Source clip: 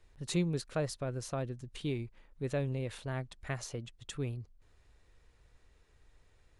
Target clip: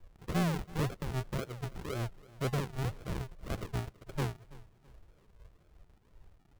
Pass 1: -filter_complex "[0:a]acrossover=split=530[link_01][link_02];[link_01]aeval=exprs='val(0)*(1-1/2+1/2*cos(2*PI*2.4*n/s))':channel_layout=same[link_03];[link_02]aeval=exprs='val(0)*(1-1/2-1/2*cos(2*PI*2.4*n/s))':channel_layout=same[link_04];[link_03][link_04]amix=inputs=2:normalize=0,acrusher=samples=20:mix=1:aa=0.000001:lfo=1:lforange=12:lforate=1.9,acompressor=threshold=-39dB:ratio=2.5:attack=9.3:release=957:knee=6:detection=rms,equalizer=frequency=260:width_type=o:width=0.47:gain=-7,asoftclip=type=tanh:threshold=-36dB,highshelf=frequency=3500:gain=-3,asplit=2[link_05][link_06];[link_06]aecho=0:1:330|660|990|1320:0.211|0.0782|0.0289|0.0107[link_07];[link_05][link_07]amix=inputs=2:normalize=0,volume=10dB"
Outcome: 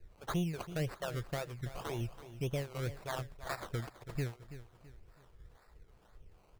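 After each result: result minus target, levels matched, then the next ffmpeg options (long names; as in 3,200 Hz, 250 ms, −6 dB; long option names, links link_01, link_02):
downward compressor: peak gain reduction +9.5 dB; sample-and-hold swept by an LFO: distortion −9 dB; echo-to-direct +7.5 dB
-filter_complex "[0:a]acrossover=split=530[link_01][link_02];[link_01]aeval=exprs='val(0)*(1-1/2+1/2*cos(2*PI*2.4*n/s))':channel_layout=same[link_03];[link_02]aeval=exprs='val(0)*(1-1/2-1/2*cos(2*PI*2.4*n/s))':channel_layout=same[link_04];[link_03][link_04]amix=inputs=2:normalize=0,acrusher=samples=20:mix=1:aa=0.000001:lfo=1:lforange=12:lforate=1.9,equalizer=frequency=260:width_type=o:width=0.47:gain=-7,asoftclip=type=tanh:threshold=-36dB,highshelf=frequency=3500:gain=-3,asplit=2[link_05][link_06];[link_06]aecho=0:1:330|660|990|1320:0.211|0.0782|0.0289|0.0107[link_07];[link_05][link_07]amix=inputs=2:normalize=0,volume=10dB"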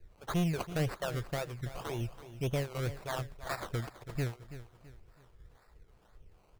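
sample-and-hold swept by an LFO: distortion −9 dB; echo-to-direct +7.5 dB
-filter_complex "[0:a]acrossover=split=530[link_01][link_02];[link_01]aeval=exprs='val(0)*(1-1/2+1/2*cos(2*PI*2.4*n/s))':channel_layout=same[link_03];[link_02]aeval=exprs='val(0)*(1-1/2-1/2*cos(2*PI*2.4*n/s))':channel_layout=same[link_04];[link_03][link_04]amix=inputs=2:normalize=0,acrusher=samples=66:mix=1:aa=0.000001:lfo=1:lforange=39.6:lforate=1.9,equalizer=frequency=260:width_type=o:width=0.47:gain=-7,asoftclip=type=tanh:threshold=-36dB,highshelf=frequency=3500:gain=-3,asplit=2[link_05][link_06];[link_06]aecho=0:1:330|660|990|1320:0.211|0.0782|0.0289|0.0107[link_07];[link_05][link_07]amix=inputs=2:normalize=0,volume=10dB"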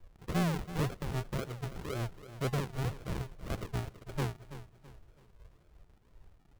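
echo-to-direct +7.5 dB
-filter_complex "[0:a]acrossover=split=530[link_01][link_02];[link_01]aeval=exprs='val(0)*(1-1/2+1/2*cos(2*PI*2.4*n/s))':channel_layout=same[link_03];[link_02]aeval=exprs='val(0)*(1-1/2-1/2*cos(2*PI*2.4*n/s))':channel_layout=same[link_04];[link_03][link_04]amix=inputs=2:normalize=0,acrusher=samples=66:mix=1:aa=0.000001:lfo=1:lforange=39.6:lforate=1.9,equalizer=frequency=260:width_type=o:width=0.47:gain=-7,asoftclip=type=tanh:threshold=-36dB,highshelf=frequency=3500:gain=-3,asplit=2[link_05][link_06];[link_06]aecho=0:1:330|660|990:0.0891|0.033|0.0122[link_07];[link_05][link_07]amix=inputs=2:normalize=0,volume=10dB"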